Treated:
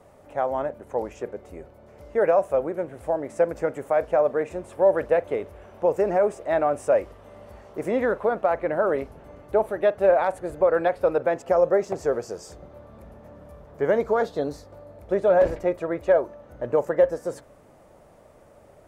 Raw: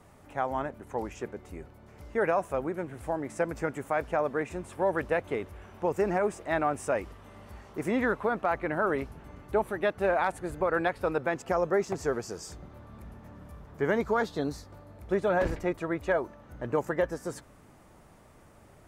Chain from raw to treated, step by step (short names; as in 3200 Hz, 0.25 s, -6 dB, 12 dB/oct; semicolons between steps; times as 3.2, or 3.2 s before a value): bell 560 Hz +12 dB 0.86 oct; on a send: reverb, pre-delay 41 ms, DRR 19 dB; on the sum: gain -1.5 dB